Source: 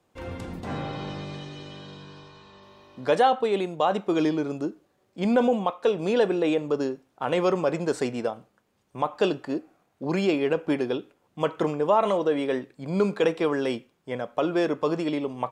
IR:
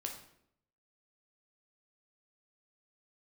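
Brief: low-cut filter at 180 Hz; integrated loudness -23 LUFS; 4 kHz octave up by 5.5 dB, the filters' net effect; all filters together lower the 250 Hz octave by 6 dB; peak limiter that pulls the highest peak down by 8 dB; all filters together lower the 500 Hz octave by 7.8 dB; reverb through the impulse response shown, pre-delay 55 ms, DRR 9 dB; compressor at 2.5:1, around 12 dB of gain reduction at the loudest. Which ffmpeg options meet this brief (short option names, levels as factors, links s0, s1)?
-filter_complex "[0:a]highpass=180,equalizer=f=250:t=o:g=-3.5,equalizer=f=500:t=o:g=-8.5,equalizer=f=4000:t=o:g=7.5,acompressor=threshold=0.0141:ratio=2.5,alimiter=level_in=1.5:limit=0.0631:level=0:latency=1,volume=0.668,asplit=2[s0][s1];[1:a]atrim=start_sample=2205,adelay=55[s2];[s1][s2]afir=irnorm=-1:irlink=0,volume=0.398[s3];[s0][s3]amix=inputs=2:normalize=0,volume=7.08"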